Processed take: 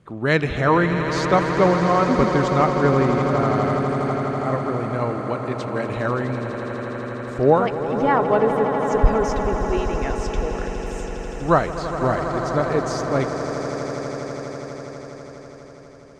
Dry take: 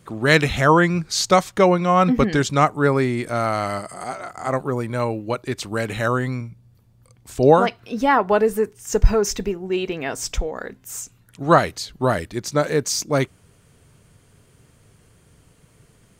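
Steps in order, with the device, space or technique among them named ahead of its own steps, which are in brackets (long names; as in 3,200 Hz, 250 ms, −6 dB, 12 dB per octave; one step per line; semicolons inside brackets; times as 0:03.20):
through cloth (low-pass filter 8,400 Hz 12 dB per octave; high-shelf EQ 3,500 Hz −13 dB)
0:05.17–0:05.89: high-pass filter 140 Hz
echo that builds up and dies away 82 ms, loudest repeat 8, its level −12.5 dB
level −2 dB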